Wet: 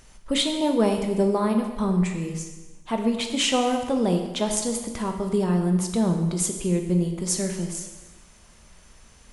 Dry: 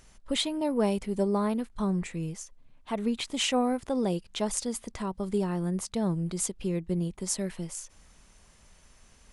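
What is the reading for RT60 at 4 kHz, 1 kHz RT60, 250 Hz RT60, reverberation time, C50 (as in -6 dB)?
1.1 s, 1.2 s, 1.2 s, 1.2 s, 6.5 dB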